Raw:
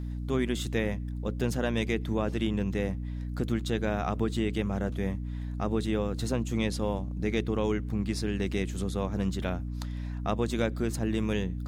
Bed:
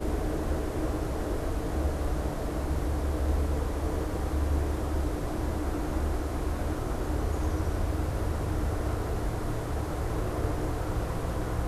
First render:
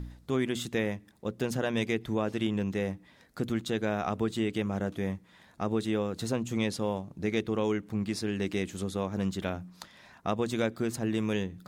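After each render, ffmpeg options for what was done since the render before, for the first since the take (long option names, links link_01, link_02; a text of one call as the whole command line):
ffmpeg -i in.wav -af "bandreject=frequency=60:width_type=h:width=4,bandreject=frequency=120:width_type=h:width=4,bandreject=frequency=180:width_type=h:width=4,bandreject=frequency=240:width_type=h:width=4,bandreject=frequency=300:width_type=h:width=4" out.wav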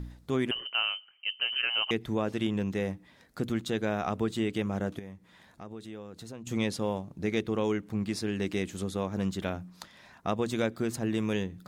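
ffmpeg -i in.wav -filter_complex "[0:a]asettb=1/sr,asplit=3[link_01][link_02][link_03];[link_01]atrim=end=0.514[link_04];[link_02]atrim=start=0.51:end=1.91,asetpts=PTS-STARTPTS,afade=type=in:duration=0.004:curve=qsin,afade=type=out:start_time=1.396:duration=0.004:curve=qsin,lowpass=frequency=2700:width_type=q:width=0.5098,lowpass=frequency=2700:width_type=q:width=0.6013,lowpass=frequency=2700:width_type=q:width=0.9,lowpass=frequency=2700:width_type=q:width=2.563,afreqshift=-3200[link_05];[link_03]atrim=start=1.906[link_06];[link_04][link_05]acrossfade=duration=0.004:curve1=hsin:curve2=qsin[link_07];[link_07][link_06]acrossfade=duration=0.004:curve1=qsin:curve2=hsin,asettb=1/sr,asplit=3[link_08][link_09][link_10];[link_08]atrim=end=4.994[link_11];[link_09]atrim=start=4.99:end=6.47,asetpts=PTS-STARTPTS,afade=type=in:duration=0.004:curve=qsin,afade=type=out:start_time=1.476:duration=0.004:curve=qsin,acompressor=threshold=-50dB:ratio=2:attack=3.2:release=140:knee=1:detection=peak[link_12];[link_10]atrim=start=6.466[link_13];[link_11][link_12]acrossfade=duration=0.004:curve1=hsin:curve2=qsin[link_14];[link_14][link_13]acrossfade=duration=0.004:curve1=qsin:curve2=hsin" out.wav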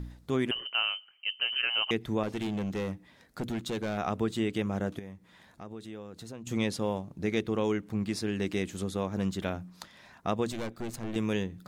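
ffmpeg -i in.wav -filter_complex "[0:a]asettb=1/sr,asplit=3[link_01][link_02][link_03];[link_01]atrim=end=2.234[link_04];[link_02]atrim=start=2.23:end=3.98,asetpts=PTS-STARTPTS,afade=type=in:duration=0.004:curve=qsin,afade=type=out:start_time=1.746:duration=0.004:curve=qsin,volume=28.5dB,asoftclip=hard,volume=-28.5dB[link_05];[link_03]atrim=start=3.976[link_06];[link_04][link_05]acrossfade=duration=0.004:curve1=hsin:curve2=qsin[link_07];[link_07][link_06]acrossfade=duration=0.004:curve1=qsin:curve2=hsin,asettb=1/sr,asplit=3[link_08][link_09][link_10];[link_08]atrim=end=10.524[link_11];[link_09]atrim=start=10.52:end=11.16,asetpts=PTS-STARTPTS,afade=type=in:duration=0.004:curve=qsin,afade=type=out:start_time=0.636:duration=0.004:curve=qsin,aeval=exprs='(tanh(39.8*val(0)+0.75)-tanh(0.75))/39.8':channel_layout=same[link_12];[link_10]atrim=start=11.156[link_13];[link_11][link_12]acrossfade=duration=0.004:curve1=hsin:curve2=qsin[link_14];[link_14][link_13]acrossfade=duration=0.004:curve1=qsin:curve2=hsin" out.wav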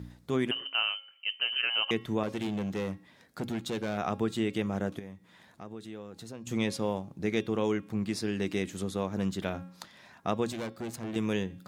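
ffmpeg -i in.wav -af "highpass=86,bandreject=frequency=272.9:width_type=h:width=4,bandreject=frequency=545.8:width_type=h:width=4,bandreject=frequency=818.7:width_type=h:width=4,bandreject=frequency=1091.6:width_type=h:width=4,bandreject=frequency=1364.5:width_type=h:width=4,bandreject=frequency=1637.4:width_type=h:width=4,bandreject=frequency=1910.3:width_type=h:width=4,bandreject=frequency=2183.2:width_type=h:width=4,bandreject=frequency=2456.1:width_type=h:width=4,bandreject=frequency=2729:width_type=h:width=4,bandreject=frequency=3001.9:width_type=h:width=4,bandreject=frequency=3274.8:width_type=h:width=4,bandreject=frequency=3547.7:width_type=h:width=4,bandreject=frequency=3820.6:width_type=h:width=4,bandreject=frequency=4093.5:width_type=h:width=4,bandreject=frequency=4366.4:width_type=h:width=4,bandreject=frequency=4639.3:width_type=h:width=4,bandreject=frequency=4912.2:width_type=h:width=4,bandreject=frequency=5185.1:width_type=h:width=4,bandreject=frequency=5458:width_type=h:width=4,bandreject=frequency=5730.9:width_type=h:width=4" out.wav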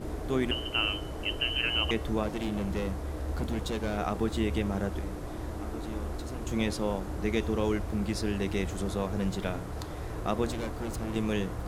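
ffmpeg -i in.wav -i bed.wav -filter_complex "[1:a]volume=-6.5dB[link_01];[0:a][link_01]amix=inputs=2:normalize=0" out.wav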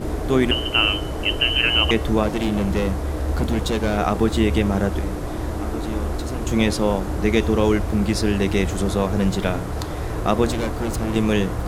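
ffmpeg -i in.wav -af "volume=10.5dB" out.wav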